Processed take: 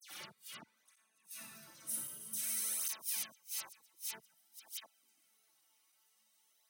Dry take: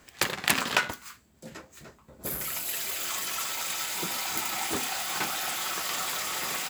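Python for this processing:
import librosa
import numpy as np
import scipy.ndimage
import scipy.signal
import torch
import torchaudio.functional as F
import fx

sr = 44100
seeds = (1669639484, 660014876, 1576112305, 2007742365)

y = fx.block_reorder(x, sr, ms=93.0, group=5)
y = fx.comb_fb(y, sr, f0_hz=220.0, decay_s=1.1, harmonics='all', damping=0.0, mix_pct=90)
y = y + 10.0 ** (-13.5 / 20.0) * np.pad(y, (int(319 * sr / 1000.0), 0))[:len(y)]
y = fx.room_shoebox(y, sr, seeds[0], volume_m3=2000.0, walls='mixed', distance_m=2.4)
y = fx.gate_flip(y, sr, shuts_db=-34.0, range_db=-35)
y = scipy.signal.sosfilt(scipy.signal.butter(4, 100.0, 'highpass', fs=sr, output='sos'), y)
y = scipy.signal.lfilter([1.0, -0.8], [1.0], y)
y = fx.dispersion(y, sr, late='lows', ms=99.0, hz=2900.0)
y = fx.formant_shift(y, sr, semitones=-4)
y = fx.flanger_cancel(y, sr, hz=0.52, depth_ms=5.4)
y = F.gain(torch.from_numpy(y), 11.0).numpy()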